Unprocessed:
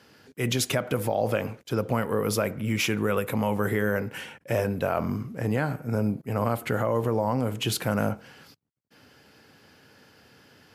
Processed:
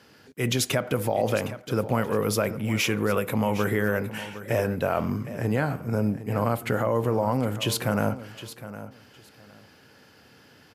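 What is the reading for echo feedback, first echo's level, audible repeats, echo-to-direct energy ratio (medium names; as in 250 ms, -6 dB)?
20%, -14.0 dB, 2, -14.0 dB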